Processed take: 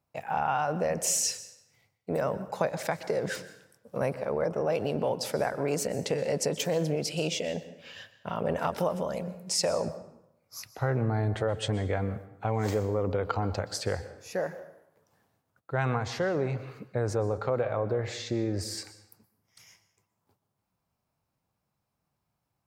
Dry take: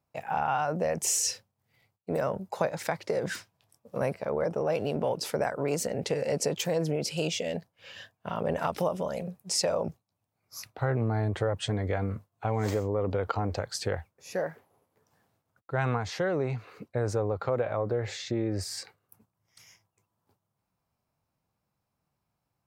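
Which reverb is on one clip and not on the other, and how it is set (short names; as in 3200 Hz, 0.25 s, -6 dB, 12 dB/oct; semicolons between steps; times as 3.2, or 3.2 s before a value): plate-style reverb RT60 0.85 s, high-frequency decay 0.75×, pre-delay 0.11 s, DRR 14 dB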